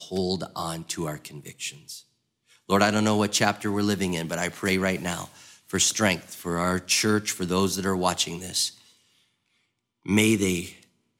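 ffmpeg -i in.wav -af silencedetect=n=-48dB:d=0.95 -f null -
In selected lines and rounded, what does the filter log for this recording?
silence_start: 8.90
silence_end: 10.05 | silence_duration: 1.15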